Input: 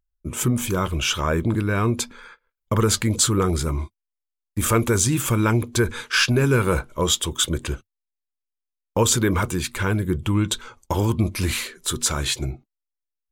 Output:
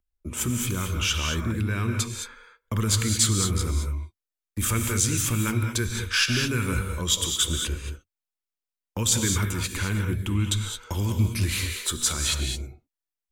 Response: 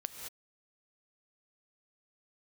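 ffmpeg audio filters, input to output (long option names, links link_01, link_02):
-filter_complex "[0:a]equalizer=frequency=140:width=5.1:gain=-10.5,acrossover=split=260|1500|2000[link_01][link_02][link_03][link_04];[link_02]acompressor=threshold=-39dB:ratio=5[link_05];[link_01][link_05][link_03][link_04]amix=inputs=4:normalize=0[link_06];[1:a]atrim=start_sample=2205[link_07];[link_06][link_07]afir=irnorm=-1:irlink=0"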